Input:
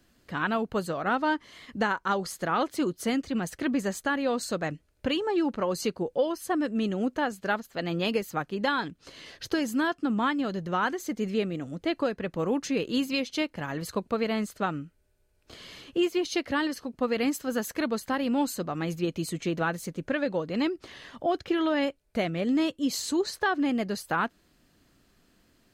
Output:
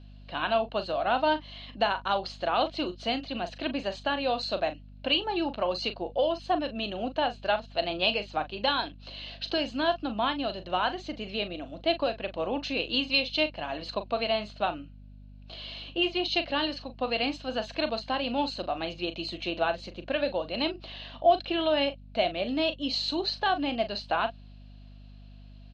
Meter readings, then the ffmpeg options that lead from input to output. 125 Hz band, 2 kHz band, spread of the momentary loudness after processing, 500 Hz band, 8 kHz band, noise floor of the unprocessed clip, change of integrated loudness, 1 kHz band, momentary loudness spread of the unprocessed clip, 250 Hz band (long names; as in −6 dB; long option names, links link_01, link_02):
−7.0 dB, −1.0 dB, 8 LU, +1.0 dB, below −15 dB, −67 dBFS, 0.0 dB, +2.0 dB, 6 LU, −6.0 dB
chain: -filter_complex "[0:a]highpass=350,equalizer=frequency=430:width_type=q:width=4:gain=-8,equalizer=frequency=670:width_type=q:width=4:gain=9,equalizer=frequency=1300:width_type=q:width=4:gain=-5,equalizer=frequency=1900:width_type=q:width=4:gain=-8,equalizer=frequency=2800:width_type=q:width=4:gain=9,equalizer=frequency=4100:width_type=q:width=4:gain=10,lowpass=frequency=4300:width=0.5412,lowpass=frequency=4300:width=1.3066,asplit=2[link_01][link_02];[link_02]adelay=39,volume=-11dB[link_03];[link_01][link_03]amix=inputs=2:normalize=0,aeval=exprs='val(0)+0.00447*(sin(2*PI*50*n/s)+sin(2*PI*2*50*n/s)/2+sin(2*PI*3*50*n/s)/3+sin(2*PI*4*50*n/s)/4+sin(2*PI*5*50*n/s)/5)':channel_layout=same"